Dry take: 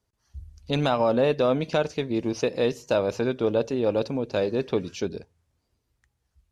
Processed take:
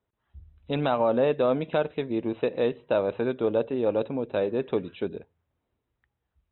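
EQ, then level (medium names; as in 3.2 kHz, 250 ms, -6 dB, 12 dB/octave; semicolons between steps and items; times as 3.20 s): brick-wall FIR low-pass 4 kHz; bass shelf 140 Hz -9 dB; treble shelf 2.9 kHz -10 dB; 0.0 dB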